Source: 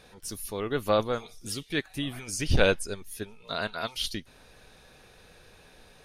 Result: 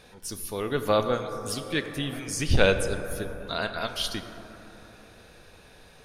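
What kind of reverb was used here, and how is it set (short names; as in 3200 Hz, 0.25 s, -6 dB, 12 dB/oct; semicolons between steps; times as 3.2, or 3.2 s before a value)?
plate-style reverb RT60 3.7 s, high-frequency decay 0.3×, DRR 7.5 dB; gain +1.5 dB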